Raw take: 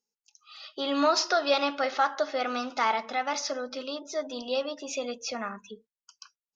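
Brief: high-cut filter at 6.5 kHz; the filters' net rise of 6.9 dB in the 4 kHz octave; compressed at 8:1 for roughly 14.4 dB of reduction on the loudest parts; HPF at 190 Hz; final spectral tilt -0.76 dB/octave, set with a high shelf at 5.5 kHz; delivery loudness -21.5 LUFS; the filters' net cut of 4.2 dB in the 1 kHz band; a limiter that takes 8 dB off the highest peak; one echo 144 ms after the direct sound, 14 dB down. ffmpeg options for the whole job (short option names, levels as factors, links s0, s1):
-af "highpass=190,lowpass=6500,equalizer=f=1000:t=o:g=-6.5,equalizer=f=4000:t=o:g=7,highshelf=f=5500:g=6.5,acompressor=threshold=0.0251:ratio=8,alimiter=level_in=1.5:limit=0.0631:level=0:latency=1,volume=0.668,aecho=1:1:144:0.2,volume=6.31"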